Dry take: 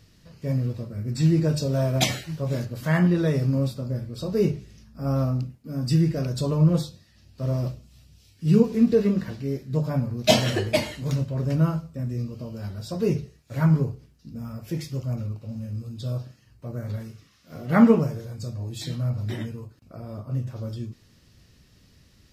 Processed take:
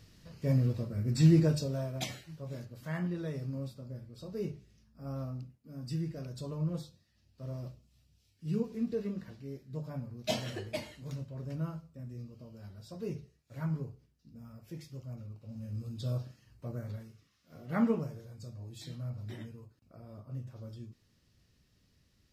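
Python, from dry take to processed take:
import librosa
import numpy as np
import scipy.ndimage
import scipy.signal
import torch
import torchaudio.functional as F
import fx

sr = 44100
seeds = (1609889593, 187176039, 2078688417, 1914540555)

y = fx.gain(x, sr, db=fx.line((1.38, -2.5), (1.93, -15.0), (15.27, -15.0), (15.85, -5.0), (16.67, -5.0), (17.08, -13.0)))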